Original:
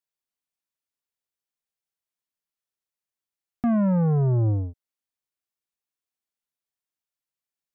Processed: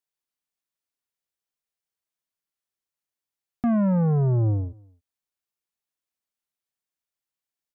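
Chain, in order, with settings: echo from a far wall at 47 m, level -27 dB

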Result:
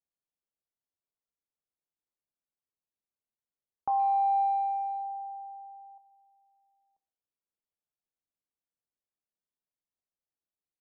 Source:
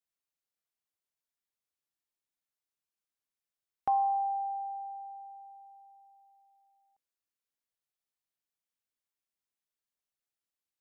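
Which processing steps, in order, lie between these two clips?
level-controlled noise filter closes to 800 Hz, open at -31.5 dBFS; 3.90–5.98 s: peaking EQ 1.1 kHz +10 dB 2.1 oct; de-hum 129.2 Hz, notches 32; peak limiter -22 dBFS, peak gain reduction 9 dB; speakerphone echo 120 ms, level -23 dB

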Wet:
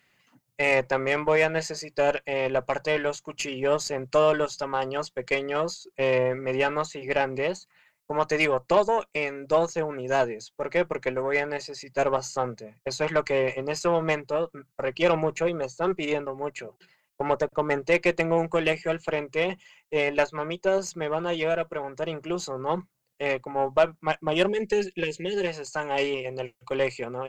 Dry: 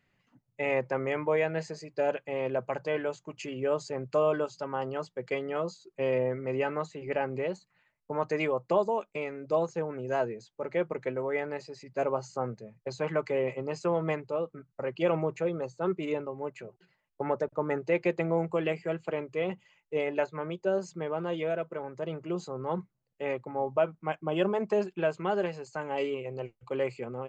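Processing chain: spectral selection erased 24.48–25.47 s, 560–1600 Hz; tilt EQ +2.5 dB/octave; Chebyshev shaper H 4 -27 dB, 6 -22 dB, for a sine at -15 dBFS; trim +7 dB

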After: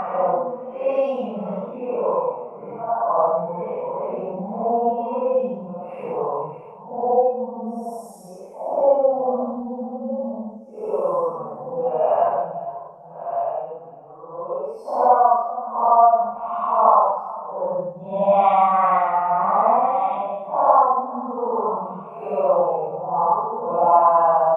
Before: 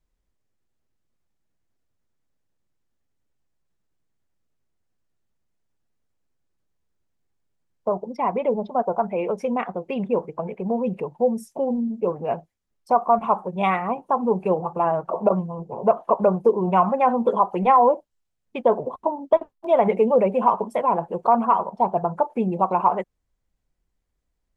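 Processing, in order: chunks repeated in reverse 691 ms, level -13 dB; compression 6:1, threshold -24 dBFS, peak gain reduction 12.5 dB; high-order bell 860 Hz +15 dB; on a send: delay 99 ms -19.5 dB; on the sum: Paulstretch 4.7×, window 0.10 s, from 9.71 s; trim -3.5 dB

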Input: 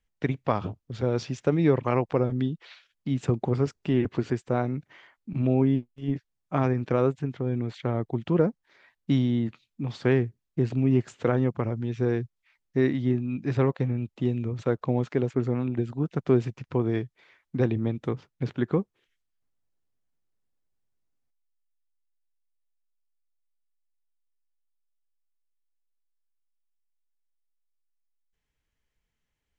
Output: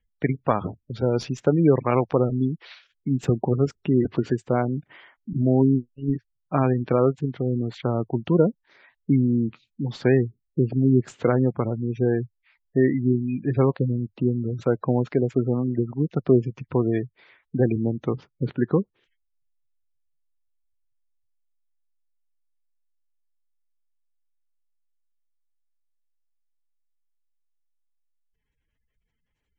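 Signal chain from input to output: tracing distortion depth 0.027 ms; dynamic bell 100 Hz, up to -6 dB, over -46 dBFS, Q 4.8; spectral gate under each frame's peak -25 dB strong; trim +4 dB

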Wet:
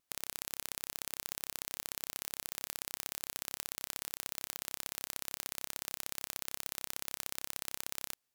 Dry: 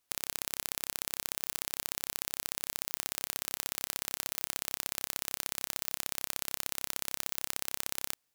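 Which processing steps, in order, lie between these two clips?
vibrato 2.3 Hz 31 cents; trim -4.5 dB

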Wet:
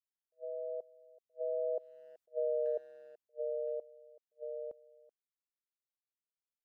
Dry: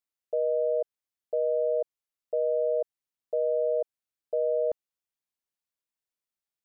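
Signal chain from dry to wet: Doppler pass-by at 2.39 s, 9 m/s, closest 3.3 m; compression 6:1, threshold -30 dBFS, peak gain reduction 6.5 dB; speakerphone echo 380 ms, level -20 dB; attacks held to a fixed rise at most 500 dB/s

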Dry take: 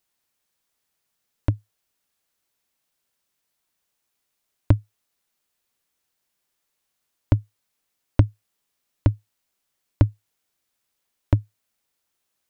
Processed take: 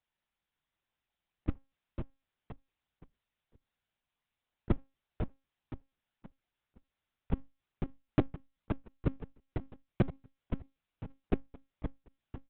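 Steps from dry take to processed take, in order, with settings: dynamic bell 110 Hz, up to -7 dB, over -30 dBFS, Q 0.8; flange 0.97 Hz, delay 4.4 ms, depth 1.5 ms, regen -87%; feedback delay 514 ms, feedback 35%, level -6 dB; monotone LPC vocoder at 8 kHz 270 Hz; trim -2 dB

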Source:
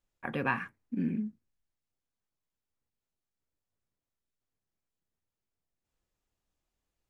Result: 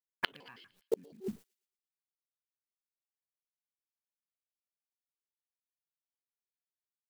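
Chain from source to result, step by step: pitch shift switched off and on +10.5 st, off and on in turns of 80 ms; expander -52 dBFS; treble shelf 3.6 kHz +10 dB; in parallel at 0 dB: compressor with a negative ratio -39 dBFS, ratio -1; on the sum: companded quantiser 6-bit; inverted gate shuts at -22 dBFS, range -32 dB; feedback echo behind a high-pass 115 ms, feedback 46%, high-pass 2.5 kHz, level -19.5 dB; trim +5 dB

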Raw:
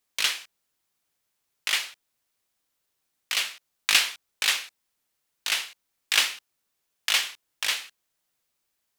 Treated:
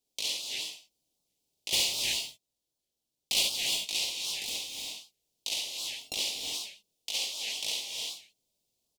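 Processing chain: 5.67–6.14 s: sorted samples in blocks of 32 samples; treble shelf 8 kHz -9.5 dB; hum notches 50/100/150/200 Hz; 1.72–3.43 s: waveshaping leveller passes 3; peak limiter -17 dBFS, peak gain reduction 10.5 dB; 4.04–4.55 s: hard clipper -30.5 dBFS, distortion -17 dB; Butterworth band-stop 1.5 kHz, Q 0.53; early reflections 50 ms -5 dB, 69 ms -6.5 dB; gated-style reverb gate 380 ms rising, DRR 2 dB; warped record 78 rpm, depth 250 cents

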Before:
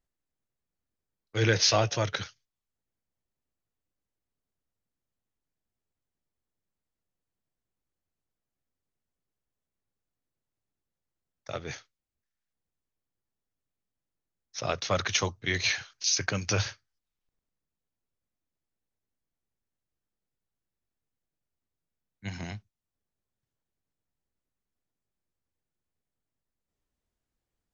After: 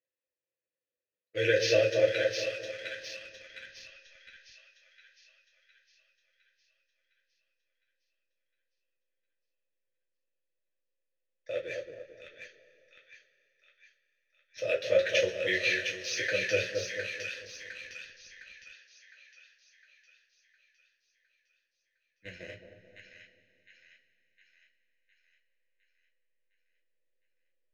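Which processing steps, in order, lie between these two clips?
vowel filter e; treble shelf 2.9 kHz +4.5 dB; two-band feedback delay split 1.2 kHz, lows 220 ms, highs 709 ms, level -5 dB; two-slope reverb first 0.22 s, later 3.2 s, from -22 dB, DRR -2.5 dB; in parallel at -8 dB: hysteresis with a dead band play -43 dBFS; on the sum: peaking EQ 810 Hz -14 dB 0.58 oct; trim +4.5 dB

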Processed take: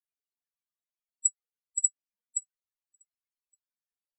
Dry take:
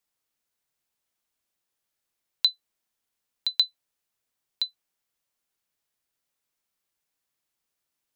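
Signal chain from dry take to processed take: wide varispeed 1.95×; loudest bins only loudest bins 8; echo from a far wall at 200 m, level -18 dB

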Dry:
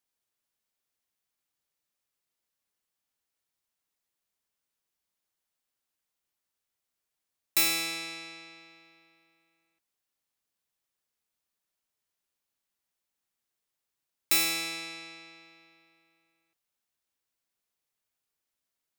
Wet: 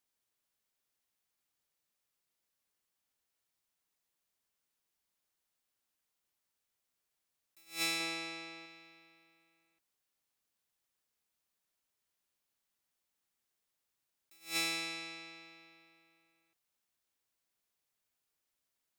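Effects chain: 8.00–8.66 s: peaking EQ 540 Hz +4.5 dB 2.9 oct; attacks held to a fixed rise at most 200 dB/s

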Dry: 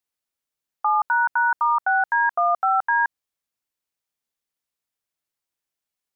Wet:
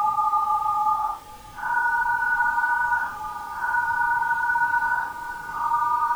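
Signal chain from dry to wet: added noise pink -44 dBFS; Paulstretch 7.7×, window 0.05 s, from 0.88 s; delay with an opening low-pass 792 ms, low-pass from 400 Hz, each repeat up 1 oct, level -6 dB; trim -3.5 dB

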